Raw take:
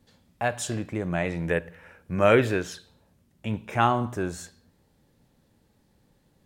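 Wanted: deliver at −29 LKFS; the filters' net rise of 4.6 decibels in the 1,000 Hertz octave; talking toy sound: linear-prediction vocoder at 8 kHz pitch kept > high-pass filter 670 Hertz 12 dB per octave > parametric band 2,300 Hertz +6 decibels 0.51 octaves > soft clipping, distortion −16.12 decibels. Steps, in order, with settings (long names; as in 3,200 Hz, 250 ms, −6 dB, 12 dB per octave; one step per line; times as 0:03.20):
parametric band 1,000 Hz +7.5 dB
linear-prediction vocoder at 8 kHz pitch kept
high-pass filter 670 Hz 12 dB per octave
parametric band 2,300 Hz +6 dB 0.51 octaves
soft clipping −9 dBFS
level −2.5 dB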